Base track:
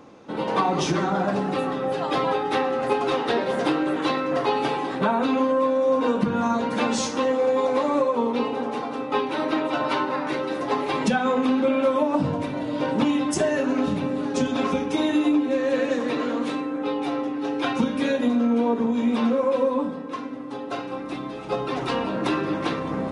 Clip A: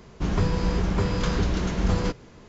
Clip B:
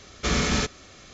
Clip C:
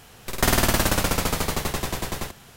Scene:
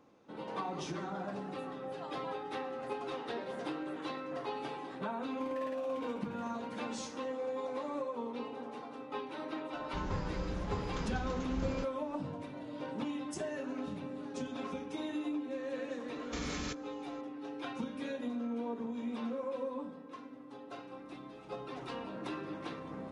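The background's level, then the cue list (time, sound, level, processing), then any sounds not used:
base track -16.5 dB
4.98 add C -15.5 dB + vowel sequencer 5.2 Hz
9.73 add A -14.5 dB
16.08 add B -13.5 dB + level quantiser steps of 13 dB

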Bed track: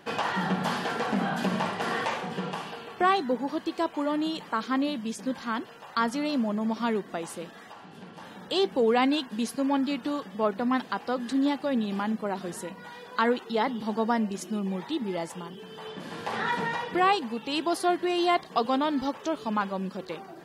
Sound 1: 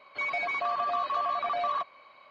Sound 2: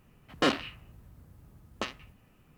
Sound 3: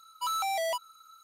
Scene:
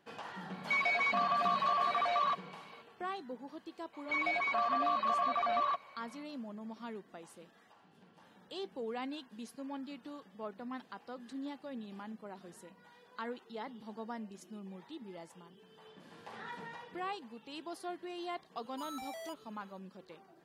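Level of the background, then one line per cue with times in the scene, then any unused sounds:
bed track -17 dB
0.52 add 1 -2 dB + tilt +2 dB/oct
3.93 add 1 -2.5 dB
18.56 add 3 -15 dB
not used: 2

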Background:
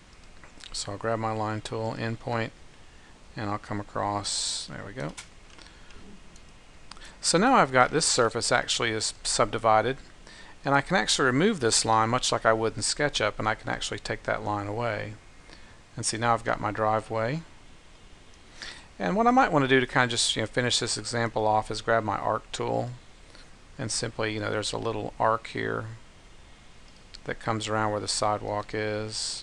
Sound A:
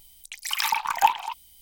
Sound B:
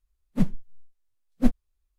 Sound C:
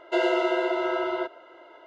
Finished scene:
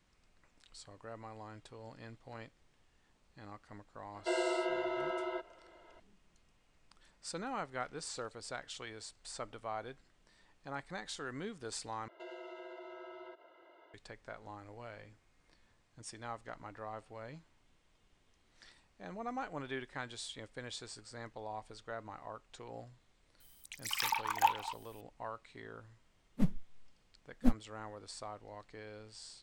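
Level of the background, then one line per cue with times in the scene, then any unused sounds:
background -20 dB
4.14 add C -10.5 dB
12.08 replace with C -12 dB + compressor 2.5:1, threshold -40 dBFS
23.4 add A -9.5 dB
26.02 add B -8 dB

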